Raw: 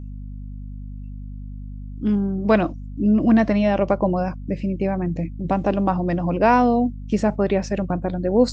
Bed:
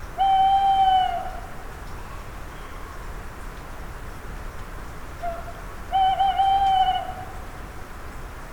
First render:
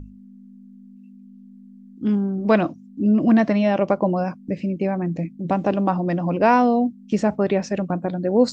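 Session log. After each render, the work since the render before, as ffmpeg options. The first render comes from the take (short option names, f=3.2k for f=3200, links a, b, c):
-af "bandreject=f=50:t=h:w=6,bandreject=f=100:t=h:w=6,bandreject=f=150:t=h:w=6"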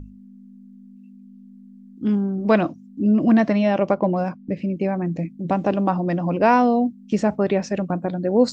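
-filter_complex "[0:a]asettb=1/sr,asplit=3[a][b][c];[a]atrim=end=3.934[d];[b]atrim=start=3.93:end=4.7,asetpts=PTS-STARTPTS,afade=t=in:d=0.004:c=qsin,afade=t=out:st=0.766:d=0.004:c=qsin,adynamicsmooth=sensitivity=6.5:basefreq=4.9k[e];[c]atrim=start=4.696[f];[d][e]acrossfade=d=0.004:c1=hsin:c2=qsin[g];[g][f]acrossfade=d=0.004:c1=qsin:c2=hsin"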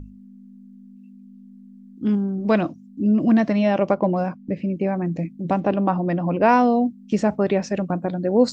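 -filter_complex "[0:a]asettb=1/sr,asplit=3[a][b][c];[a]atrim=end=2.154[d];[b]atrim=start=2.15:end=3.58,asetpts=PTS-STARTPTS,afade=t=in:d=0.004:c=qsin,afade=t=out:st=1.426:d=0.004:c=qsin,equalizer=f=1k:w=0.38:g=-3[e];[c]atrim=start=3.576[f];[d][e]acrossfade=d=0.004:c1=hsin:c2=qsin[g];[g][f]acrossfade=d=0.004:c1=qsin:c2=hsin,asettb=1/sr,asplit=3[h][i][j];[h]atrim=end=4.264[k];[i]atrim=start=4.26:end=4.87,asetpts=PTS-STARTPTS,afade=t=in:d=0.004:c=qsin,afade=t=out:st=0.606:d=0.004:c=qsin,acrossover=split=3000[l][m];[m]acompressor=threshold=-58dB:ratio=4:attack=1:release=60[n];[l][n]amix=inputs=2:normalize=0[o];[j]atrim=start=4.866[p];[k][o]acrossfade=d=0.004:c1=hsin:c2=qsin[q];[q][p]acrossfade=d=0.004:c1=qsin:c2=hsin,asettb=1/sr,asplit=3[r][s][t];[r]atrim=end=5.604[u];[s]atrim=start=5.6:end=6.49,asetpts=PTS-STARTPTS,afade=t=in:d=0.004:c=qsin,afade=t=out:st=0.886:d=0.004:c=qsin,lowpass=3.7k[v];[t]atrim=start=6.486[w];[u][v]acrossfade=d=0.004:c1=hsin:c2=qsin[x];[x][w]acrossfade=d=0.004:c1=qsin:c2=hsin"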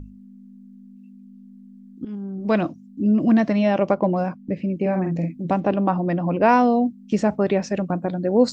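-filter_complex "[0:a]asettb=1/sr,asplit=3[a][b][c];[a]atrim=end=4.794[d];[b]atrim=start=4.79:end=5.44,asetpts=PTS-STARTPTS,afade=t=in:d=0.004:c=qsin,afade=t=out:st=0.646:d=0.004:c=qsin,asplit=2[e][f];[f]adelay=48,volume=-5dB[g];[e][g]amix=inputs=2:normalize=0,atrim=end_sample=28665[h];[c]atrim=start=5.436[i];[d][h]acrossfade=d=0.004:c1=hsin:c2=qsin[j];[j][i]acrossfade=d=0.004:c1=qsin:c2=hsin,asplit=2[k][l];[k]atrim=end=2.05,asetpts=PTS-STARTPTS,afade=t=out:st=2.046:d=0.004:c=hsin:silence=0.133352[m];[l]atrim=start=2.05,asetpts=PTS-STARTPTS,afade=t=in:d=0.58:silence=0.133352[n];[m][n]concat=n=2:v=0:a=1"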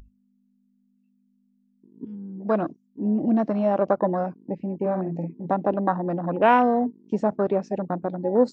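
-af "afwtdn=0.0501,lowshelf=f=210:g=-10.5"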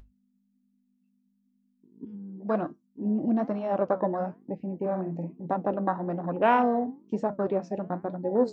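-af "flanger=delay=7.1:depth=7.1:regen=-75:speed=1.1:shape=sinusoidal"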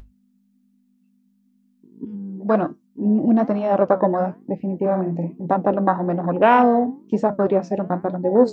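-af "volume=9dB,alimiter=limit=-2dB:level=0:latency=1"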